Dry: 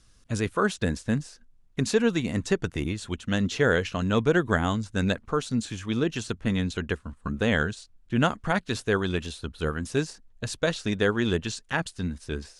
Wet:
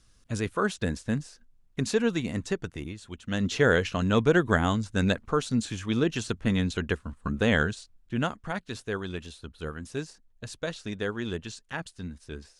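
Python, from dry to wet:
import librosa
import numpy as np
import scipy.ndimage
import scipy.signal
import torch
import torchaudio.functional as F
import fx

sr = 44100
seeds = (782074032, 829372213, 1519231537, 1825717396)

y = fx.gain(x, sr, db=fx.line((2.26, -2.5), (3.08, -10.0), (3.52, 0.5), (7.74, 0.5), (8.41, -7.5)))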